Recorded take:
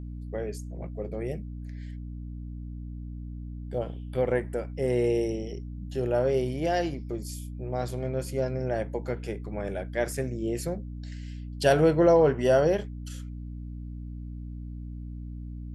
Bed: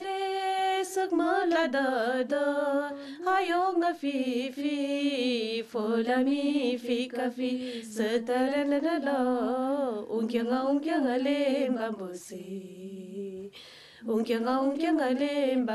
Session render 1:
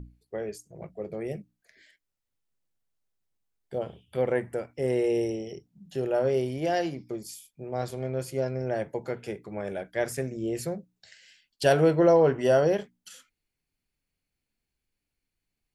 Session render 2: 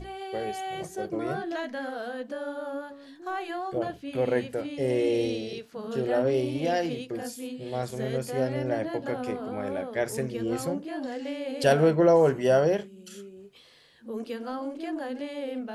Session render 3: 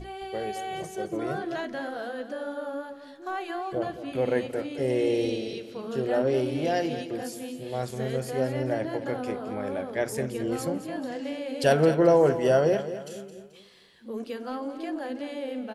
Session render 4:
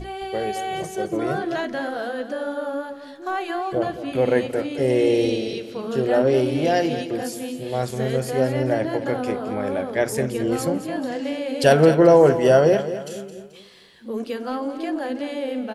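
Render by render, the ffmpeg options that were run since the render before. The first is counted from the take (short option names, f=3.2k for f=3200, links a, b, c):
-af "bandreject=f=60:t=h:w=6,bandreject=f=120:t=h:w=6,bandreject=f=180:t=h:w=6,bandreject=f=240:t=h:w=6,bandreject=f=300:t=h:w=6"
-filter_complex "[1:a]volume=-7dB[a];[0:a][a]amix=inputs=2:normalize=0"
-af "aecho=1:1:217|434|651|868:0.251|0.103|0.0422|0.0173"
-af "volume=6.5dB,alimiter=limit=-3dB:level=0:latency=1"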